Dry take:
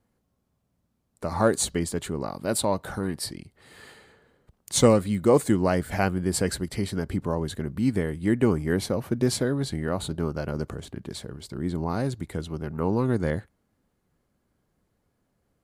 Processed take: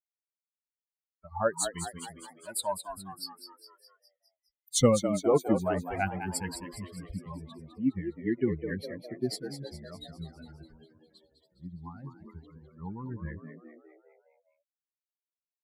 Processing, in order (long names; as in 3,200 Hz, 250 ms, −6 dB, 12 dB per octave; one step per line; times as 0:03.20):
spectral dynamics exaggerated over time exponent 3
echo with shifted repeats 205 ms, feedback 54%, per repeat +80 Hz, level −9 dB